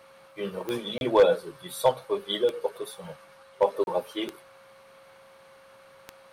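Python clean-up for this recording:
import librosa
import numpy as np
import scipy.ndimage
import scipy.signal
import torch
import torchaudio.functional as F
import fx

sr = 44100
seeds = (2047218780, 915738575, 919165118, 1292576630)

y = fx.fix_declip(x, sr, threshold_db=-11.5)
y = fx.fix_declick_ar(y, sr, threshold=10.0)
y = fx.notch(y, sr, hz=540.0, q=30.0)
y = fx.fix_interpolate(y, sr, at_s=(0.98, 3.84), length_ms=31.0)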